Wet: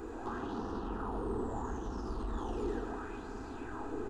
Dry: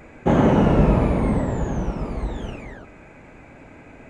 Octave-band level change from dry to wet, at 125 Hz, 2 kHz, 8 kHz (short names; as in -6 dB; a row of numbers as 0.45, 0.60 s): -22.0 dB, -14.0 dB, n/a